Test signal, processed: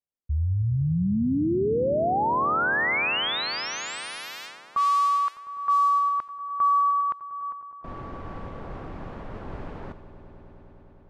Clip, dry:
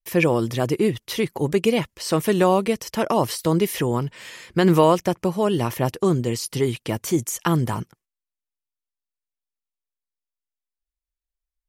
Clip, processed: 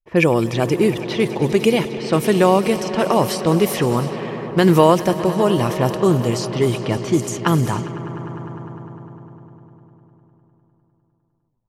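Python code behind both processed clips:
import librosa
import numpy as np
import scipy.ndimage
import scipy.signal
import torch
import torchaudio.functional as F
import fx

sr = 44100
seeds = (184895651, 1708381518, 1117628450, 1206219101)

y = fx.echo_swell(x, sr, ms=101, loudest=5, wet_db=-17.5)
y = fx.env_lowpass(y, sr, base_hz=710.0, full_db=-17.0)
y = y * librosa.db_to_amplitude(3.5)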